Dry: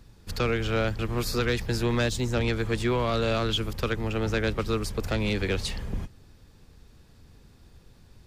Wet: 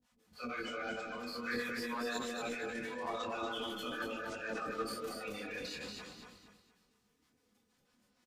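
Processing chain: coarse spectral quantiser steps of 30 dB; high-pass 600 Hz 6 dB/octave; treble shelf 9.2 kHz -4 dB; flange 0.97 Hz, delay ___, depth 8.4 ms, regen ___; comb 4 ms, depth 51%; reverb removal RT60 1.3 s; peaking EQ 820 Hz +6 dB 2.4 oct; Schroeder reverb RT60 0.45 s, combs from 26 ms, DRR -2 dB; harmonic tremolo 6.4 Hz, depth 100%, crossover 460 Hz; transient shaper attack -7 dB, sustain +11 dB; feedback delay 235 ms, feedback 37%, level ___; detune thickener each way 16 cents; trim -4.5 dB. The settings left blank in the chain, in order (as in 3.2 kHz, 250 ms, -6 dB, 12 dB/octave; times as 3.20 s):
6.2 ms, +89%, -4 dB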